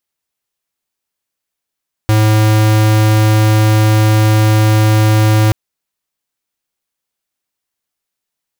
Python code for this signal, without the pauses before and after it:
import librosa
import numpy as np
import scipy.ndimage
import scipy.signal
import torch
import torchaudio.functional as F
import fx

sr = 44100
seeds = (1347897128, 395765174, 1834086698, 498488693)

y = fx.tone(sr, length_s=3.43, wave='square', hz=108.0, level_db=-9.5)